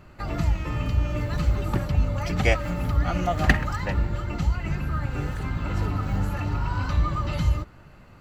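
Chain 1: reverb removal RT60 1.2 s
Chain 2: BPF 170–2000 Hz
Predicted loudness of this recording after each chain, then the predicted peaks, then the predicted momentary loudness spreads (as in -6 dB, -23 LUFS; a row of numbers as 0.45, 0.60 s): -28.0, -31.5 LUFS; -4.5, -6.5 dBFS; 7, 8 LU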